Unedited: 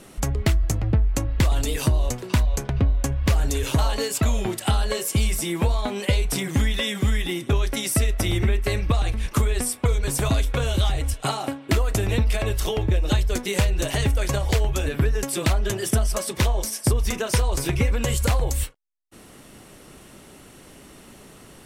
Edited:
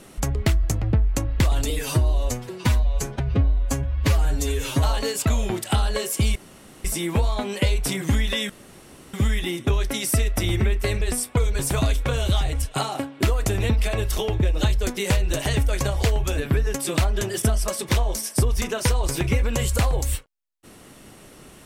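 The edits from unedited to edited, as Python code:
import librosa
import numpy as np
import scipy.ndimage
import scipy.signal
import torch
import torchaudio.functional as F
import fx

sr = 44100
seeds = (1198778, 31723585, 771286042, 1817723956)

y = fx.edit(x, sr, fx.stretch_span(start_s=1.7, length_s=2.09, factor=1.5),
    fx.insert_room_tone(at_s=5.31, length_s=0.49),
    fx.insert_room_tone(at_s=6.96, length_s=0.64),
    fx.cut(start_s=8.84, length_s=0.66), tone=tone)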